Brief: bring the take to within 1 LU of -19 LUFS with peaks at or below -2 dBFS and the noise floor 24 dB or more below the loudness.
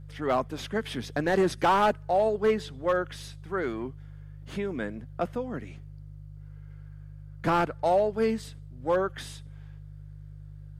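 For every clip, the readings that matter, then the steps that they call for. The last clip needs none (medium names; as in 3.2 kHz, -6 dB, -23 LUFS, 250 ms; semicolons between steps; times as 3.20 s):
clipped samples 0.6%; clipping level -17.0 dBFS; hum 50 Hz; highest harmonic 150 Hz; hum level -42 dBFS; loudness -28.5 LUFS; peak level -17.0 dBFS; loudness target -19.0 LUFS
-> clip repair -17 dBFS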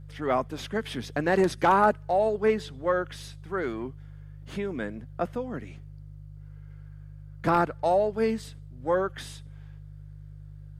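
clipped samples 0.0%; hum 50 Hz; highest harmonic 150 Hz; hum level -42 dBFS
-> de-hum 50 Hz, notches 3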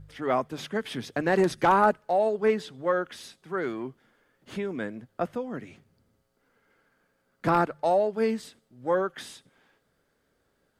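hum not found; loudness -27.5 LUFS; peak level -9.0 dBFS; loudness target -19.0 LUFS
-> trim +8.5 dB; peak limiter -2 dBFS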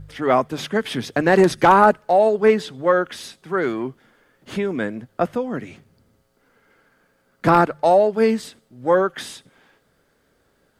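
loudness -19.0 LUFS; peak level -2.0 dBFS; noise floor -64 dBFS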